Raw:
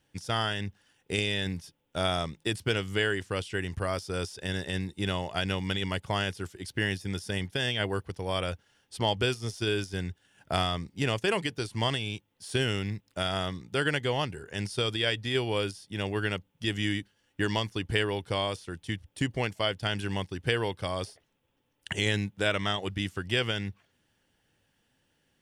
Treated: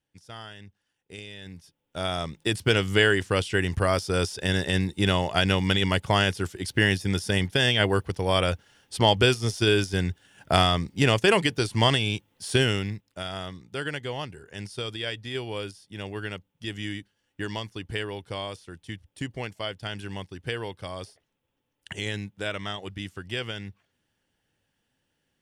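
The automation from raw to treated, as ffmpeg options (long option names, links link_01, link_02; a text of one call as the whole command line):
ffmpeg -i in.wav -af "volume=7.5dB,afade=type=in:start_time=1.4:duration=0.78:silence=0.237137,afade=type=in:start_time=2.18:duration=0.68:silence=0.421697,afade=type=out:start_time=12.46:duration=0.64:silence=0.266073" out.wav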